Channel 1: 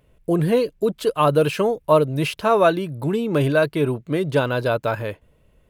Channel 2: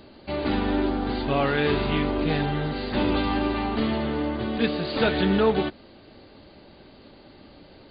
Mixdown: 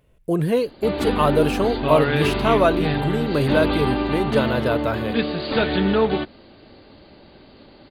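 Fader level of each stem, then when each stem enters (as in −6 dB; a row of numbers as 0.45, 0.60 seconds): −1.5, +2.0 decibels; 0.00, 0.55 seconds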